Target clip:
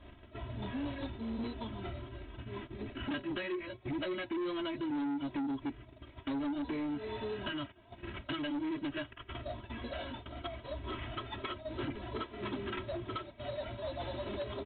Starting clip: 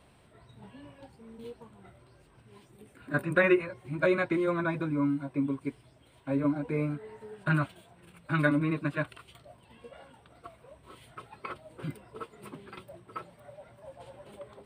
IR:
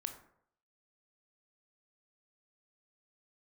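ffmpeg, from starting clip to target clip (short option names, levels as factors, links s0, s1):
-af "acrusher=samples=10:mix=1:aa=0.000001,acontrast=81,highshelf=f=2200:g=11.5,acompressor=threshold=0.0251:ratio=20,lowshelf=f=320:g=11,aecho=1:1:3.1:0.97,agate=range=0.251:threshold=0.00891:ratio=16:detection=peak,aresample=8000,asoftclip=type=tanh:threshold=0.0282,aresample=44100,volume=0.841"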